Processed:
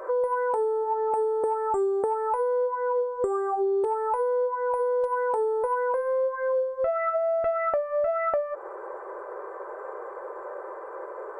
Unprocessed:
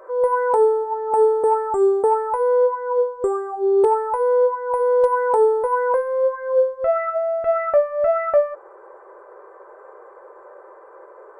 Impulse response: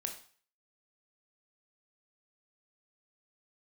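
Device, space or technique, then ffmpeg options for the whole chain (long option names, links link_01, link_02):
serial compression, peaks first: -af "acompressor=threshold=-24dB:ratio=6,acompressor=threshold=-33dB:ratio=2,volume=6dB"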